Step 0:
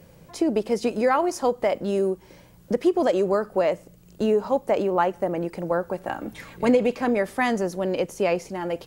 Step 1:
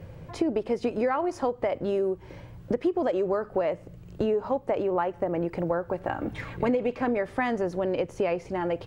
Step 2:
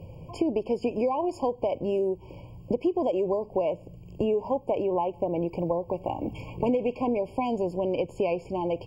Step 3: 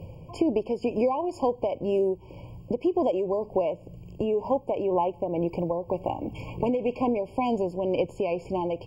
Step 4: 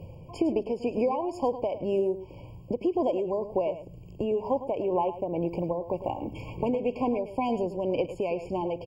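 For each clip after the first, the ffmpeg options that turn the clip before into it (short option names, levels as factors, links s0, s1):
-af "equalizer=f=100:t=o:w=0.33:g=10,equalizer=f=200:t=o:w=0.33:g=-9,equalizer=f=12500:t=o:w=0.33:g=-9,acompressor=threshold=0.0316:ratio=3,bass=f=250:g=4,treble=f=4000:g=-13,volume=1.58"
-af "afftfilt=real='re*eq(mod(floor(b*sr/1024/1100),2),0)':imag='im*eq(mod(floor(b*sr/1024/1100),2),0)':win_size=1024:overlap=0.75"
-af "tremolo=f=2:d=0.37,volume=1.33"
-af "aecho=1:1:106:0.237,volume=0.794"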